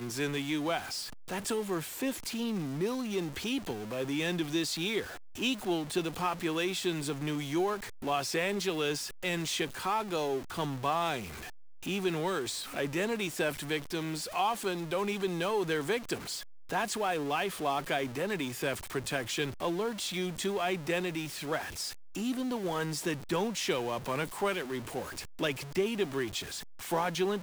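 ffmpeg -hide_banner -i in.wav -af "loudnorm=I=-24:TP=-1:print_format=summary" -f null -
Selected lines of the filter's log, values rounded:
Input Integrated:    -33.2 LUFS
Input True Peak:     -17.5 dBTP
Input LRA:             1.6 LU
Input Threshold:     -43.2 LUFS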